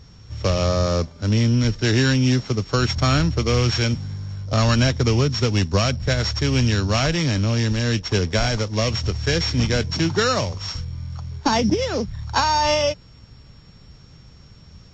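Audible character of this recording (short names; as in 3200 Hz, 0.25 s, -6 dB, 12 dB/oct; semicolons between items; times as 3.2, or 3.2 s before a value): a buzz of ramps at a fixed pitch in blocks of 8 samples; Vorbis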